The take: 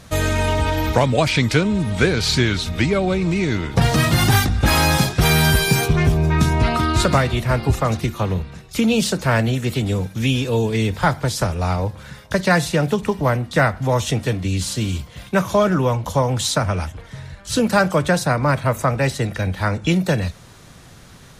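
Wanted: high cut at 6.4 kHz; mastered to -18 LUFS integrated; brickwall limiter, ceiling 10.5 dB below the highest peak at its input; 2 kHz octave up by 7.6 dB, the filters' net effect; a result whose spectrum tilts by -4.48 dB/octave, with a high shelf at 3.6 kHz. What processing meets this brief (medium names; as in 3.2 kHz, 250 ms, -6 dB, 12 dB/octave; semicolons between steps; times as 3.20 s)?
low-pass 6.4 kHz; peaking EQ 2 kHz +8 dB; treble shelf 3.6 kHz +7 dB; trim +0.5 dB; peak limiter -7 dBFS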